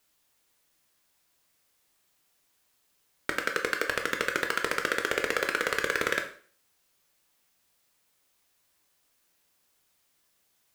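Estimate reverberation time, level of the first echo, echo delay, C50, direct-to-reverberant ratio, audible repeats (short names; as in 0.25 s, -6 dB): 0.45 s, none, none, 9.5 dB, 4.0 dB, none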